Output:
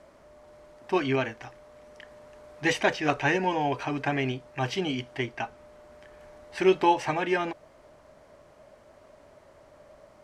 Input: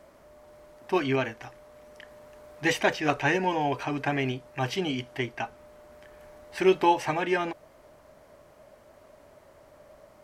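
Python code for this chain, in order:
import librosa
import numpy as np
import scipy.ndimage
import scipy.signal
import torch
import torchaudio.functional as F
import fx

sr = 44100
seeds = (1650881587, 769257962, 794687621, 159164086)

y = scipy.signal.sosfilt(scipy.signal.butter(2, 8900.0, 'lowpass', fs=sr, output='sos'), x)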